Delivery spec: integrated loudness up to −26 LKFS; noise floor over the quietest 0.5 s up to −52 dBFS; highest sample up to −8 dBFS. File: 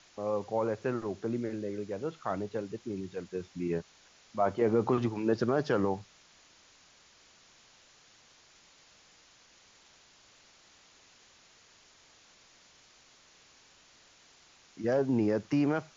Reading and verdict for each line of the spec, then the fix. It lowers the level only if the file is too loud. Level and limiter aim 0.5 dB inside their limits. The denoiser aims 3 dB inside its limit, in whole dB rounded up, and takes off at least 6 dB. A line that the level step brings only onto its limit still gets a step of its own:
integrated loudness −32.0 LKFS: in spec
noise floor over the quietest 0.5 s −61 dBFS: in spec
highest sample −15.5 dBFS: in spec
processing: no processing needed

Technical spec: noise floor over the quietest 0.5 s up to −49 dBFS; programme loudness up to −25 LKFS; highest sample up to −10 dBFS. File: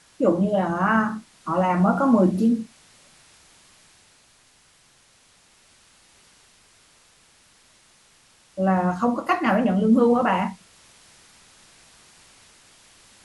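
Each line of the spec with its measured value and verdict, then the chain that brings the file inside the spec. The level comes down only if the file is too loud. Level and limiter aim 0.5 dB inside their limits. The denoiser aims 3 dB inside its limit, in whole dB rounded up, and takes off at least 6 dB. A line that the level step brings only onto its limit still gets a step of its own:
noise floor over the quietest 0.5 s −58 dBFS: in spec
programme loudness −21.5 LKFS: out of spec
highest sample −7.0 dBFS: out of spec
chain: level −4 dB

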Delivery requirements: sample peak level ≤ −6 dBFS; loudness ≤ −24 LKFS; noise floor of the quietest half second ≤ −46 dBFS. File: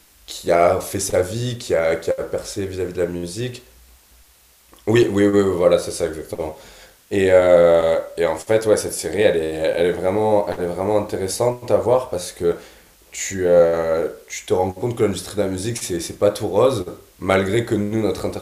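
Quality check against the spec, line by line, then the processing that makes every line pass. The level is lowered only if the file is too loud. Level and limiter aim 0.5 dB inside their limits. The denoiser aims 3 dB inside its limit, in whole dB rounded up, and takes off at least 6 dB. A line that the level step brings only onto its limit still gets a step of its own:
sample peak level −1.5 dBFS: out of spec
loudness −19.5 LKFS: out of spec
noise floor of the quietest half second −53 dBFS: in spec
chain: level −5 dB

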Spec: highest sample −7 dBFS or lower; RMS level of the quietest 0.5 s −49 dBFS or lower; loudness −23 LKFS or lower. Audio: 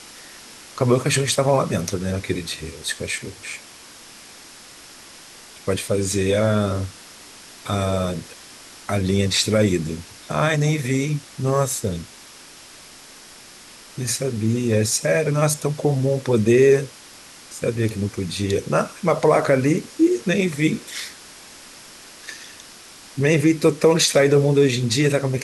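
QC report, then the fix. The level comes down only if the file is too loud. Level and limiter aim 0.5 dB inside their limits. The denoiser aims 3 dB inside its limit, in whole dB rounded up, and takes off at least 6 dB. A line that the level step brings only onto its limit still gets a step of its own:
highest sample −5.5 dBFS: out of spec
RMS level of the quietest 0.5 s −44 dBFS: out of spec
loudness −20.5 LKFS: out of spec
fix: broadband denoise 6 dB, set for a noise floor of −44 dBFS
level −3 dB

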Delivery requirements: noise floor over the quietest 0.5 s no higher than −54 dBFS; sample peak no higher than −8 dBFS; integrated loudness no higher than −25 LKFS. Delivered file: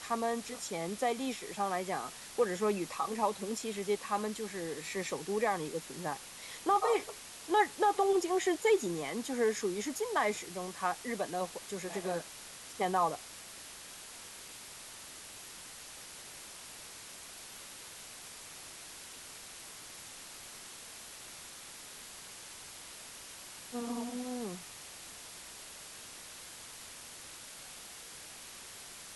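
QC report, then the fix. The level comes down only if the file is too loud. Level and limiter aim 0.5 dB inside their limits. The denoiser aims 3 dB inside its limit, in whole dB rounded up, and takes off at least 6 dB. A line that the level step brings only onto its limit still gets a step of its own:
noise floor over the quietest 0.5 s −49 dBFS: out of spec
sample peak −17.0 dBFS: in spec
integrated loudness −37.0 LKFS: in spec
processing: broadband denoise 8 dB, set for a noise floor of −49 dBFS

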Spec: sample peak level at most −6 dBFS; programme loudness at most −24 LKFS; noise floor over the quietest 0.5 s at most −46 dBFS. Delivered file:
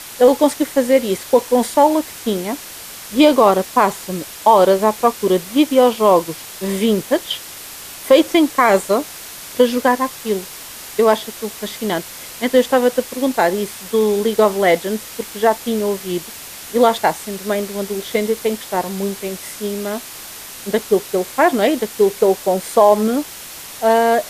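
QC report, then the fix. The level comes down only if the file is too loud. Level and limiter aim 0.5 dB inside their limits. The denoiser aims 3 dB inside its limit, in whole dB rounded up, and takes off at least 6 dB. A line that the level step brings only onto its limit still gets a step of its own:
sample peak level −1.0 dBFS: out of spec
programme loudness −17.0 LKFS: out of spec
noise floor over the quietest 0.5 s −34 dBFS: out of spec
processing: broadband denoise 8 dB, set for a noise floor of −34 dBFS
level −7.5 dB

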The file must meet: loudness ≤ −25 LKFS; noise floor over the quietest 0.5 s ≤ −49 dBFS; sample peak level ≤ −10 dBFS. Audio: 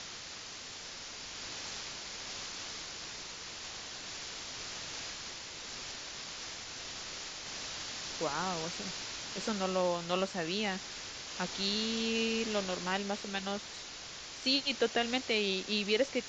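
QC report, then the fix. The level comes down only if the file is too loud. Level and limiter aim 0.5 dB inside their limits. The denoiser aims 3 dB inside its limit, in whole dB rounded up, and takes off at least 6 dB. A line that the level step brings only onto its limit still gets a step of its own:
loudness −36.0 LKFS: in spec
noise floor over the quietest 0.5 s −46 dBFS: out of spec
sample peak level −16.5 dBFS: in spec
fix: broadband denoise 6 dB, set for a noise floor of −46 dBFS

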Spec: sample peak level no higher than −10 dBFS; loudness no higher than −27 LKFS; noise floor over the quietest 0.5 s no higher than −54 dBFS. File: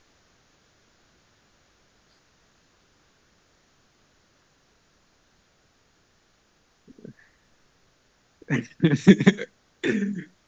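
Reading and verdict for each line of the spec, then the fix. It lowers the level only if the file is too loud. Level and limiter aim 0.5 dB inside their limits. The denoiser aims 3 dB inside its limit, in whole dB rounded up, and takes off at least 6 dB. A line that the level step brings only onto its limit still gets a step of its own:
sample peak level −1.5 dBFS: out of spec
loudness −22.0 LKFS: out of spec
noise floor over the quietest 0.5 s −65 dBFS: in spec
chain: level −5.5 dB
brickwall limiter −10.5 dBFS

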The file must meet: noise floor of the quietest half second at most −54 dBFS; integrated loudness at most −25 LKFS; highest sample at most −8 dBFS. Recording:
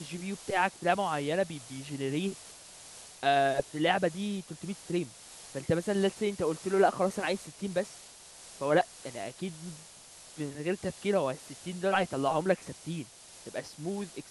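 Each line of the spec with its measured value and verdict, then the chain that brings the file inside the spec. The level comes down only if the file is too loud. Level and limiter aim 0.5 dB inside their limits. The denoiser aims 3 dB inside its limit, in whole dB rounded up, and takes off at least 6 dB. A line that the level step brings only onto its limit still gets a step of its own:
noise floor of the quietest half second −52 dBFS: out of spec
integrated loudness −31.5 LKFS: in spec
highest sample −11.0 dBFS: in spec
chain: broadband denoise 6 dB, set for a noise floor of −52 dBFS

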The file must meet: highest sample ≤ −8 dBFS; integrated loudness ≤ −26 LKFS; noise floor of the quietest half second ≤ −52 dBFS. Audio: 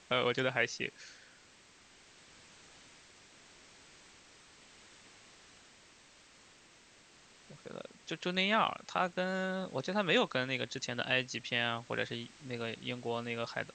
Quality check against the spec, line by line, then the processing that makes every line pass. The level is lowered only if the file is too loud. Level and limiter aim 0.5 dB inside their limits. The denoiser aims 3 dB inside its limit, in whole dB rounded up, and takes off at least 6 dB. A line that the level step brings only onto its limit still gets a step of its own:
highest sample −15.5 dBFS: in spec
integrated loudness −34.0 LKFS: in spec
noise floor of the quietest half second −61 dBFS: in spec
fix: no processing needed

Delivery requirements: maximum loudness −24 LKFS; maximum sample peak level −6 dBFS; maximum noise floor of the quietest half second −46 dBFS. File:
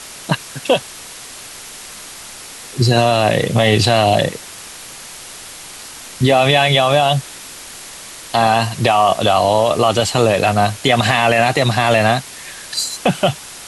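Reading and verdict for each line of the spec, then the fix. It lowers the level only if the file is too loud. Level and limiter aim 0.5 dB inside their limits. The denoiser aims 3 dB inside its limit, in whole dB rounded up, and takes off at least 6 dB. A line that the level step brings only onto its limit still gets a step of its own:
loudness −15.0 LKFS: out of spec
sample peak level −3.0 dBFS: out of spec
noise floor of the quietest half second −34 dBFS: out of spec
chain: broadband denoise 6 dB, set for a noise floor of −34 dBFS
level −9.5 dB

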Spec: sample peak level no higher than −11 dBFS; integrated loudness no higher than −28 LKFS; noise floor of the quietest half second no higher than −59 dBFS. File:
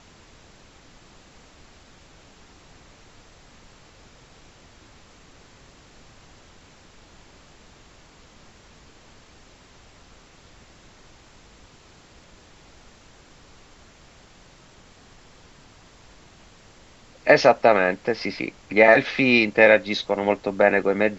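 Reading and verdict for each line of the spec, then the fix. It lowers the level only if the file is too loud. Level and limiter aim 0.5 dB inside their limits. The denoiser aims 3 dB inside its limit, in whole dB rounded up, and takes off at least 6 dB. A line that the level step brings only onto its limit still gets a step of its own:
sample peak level −1.5 dBFS: out of spec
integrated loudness −19.0 LKFS: out of spec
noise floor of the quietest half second −51 dBFS: out of spec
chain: level −9.5 dB
brickwall limiter −11.5 dBFS

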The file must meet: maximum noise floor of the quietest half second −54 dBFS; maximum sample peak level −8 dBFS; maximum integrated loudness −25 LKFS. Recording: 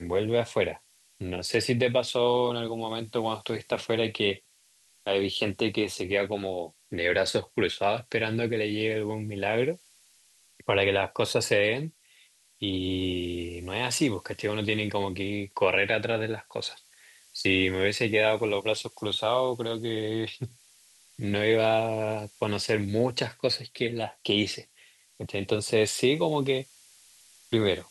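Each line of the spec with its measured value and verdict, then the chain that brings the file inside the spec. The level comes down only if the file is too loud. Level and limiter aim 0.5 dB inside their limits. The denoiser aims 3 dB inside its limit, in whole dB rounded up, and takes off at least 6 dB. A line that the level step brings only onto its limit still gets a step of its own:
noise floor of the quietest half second −63 dBFS: in spec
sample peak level −9.5 dBFS: in spec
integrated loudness −27.5 LKFS: in spec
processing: no processing needed

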